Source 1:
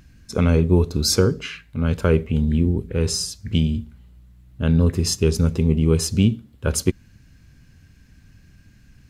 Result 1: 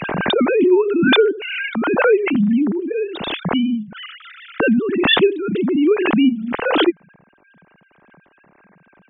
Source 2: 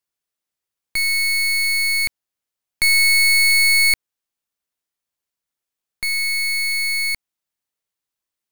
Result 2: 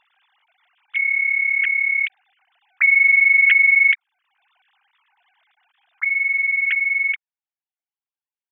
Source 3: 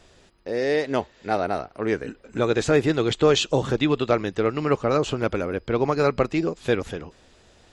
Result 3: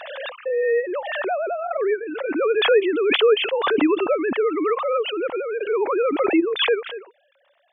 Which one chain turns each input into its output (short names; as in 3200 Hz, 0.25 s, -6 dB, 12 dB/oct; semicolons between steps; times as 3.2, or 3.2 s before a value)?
sine-wave speech; backwards sustainer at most 29 dB/s